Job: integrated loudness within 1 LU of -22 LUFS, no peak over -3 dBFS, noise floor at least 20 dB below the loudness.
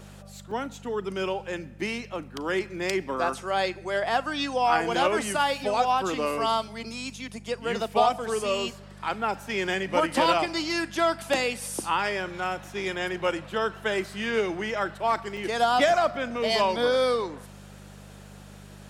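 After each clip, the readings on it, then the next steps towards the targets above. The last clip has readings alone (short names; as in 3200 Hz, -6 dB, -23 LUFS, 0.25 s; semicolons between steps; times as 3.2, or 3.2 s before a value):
dropouts 2; longest dropout 3.7 ms; hum 50 Hz; harmonics up to 200 Hz; hum level -45 dBFS; loudness -27.0 LUFS; peak -8.5 dBFS; loudness target -22.0 LUFS
-> interpolate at 0.51/15.37, 3.7 ms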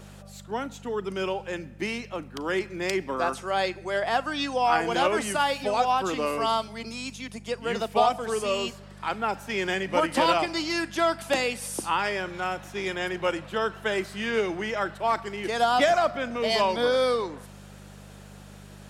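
dropouts 0; hum 50 Hz; harmonics up to 200 Hz; hum level -45 dBFS
-> de-hum 50 Hz, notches 4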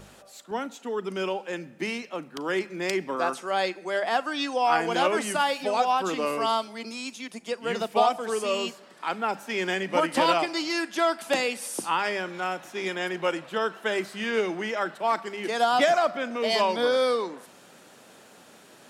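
hum none; loudness -27.0 LUFS; peak -8.5 dBFS; loudness target -22.0 LUFS
-> gain +5 dB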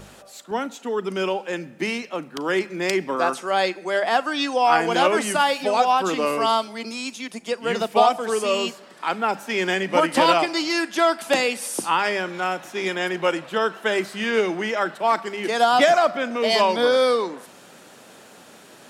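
loudness -22.0 LUFS; peak -3.5 dBFS; noise floor -47 dBFS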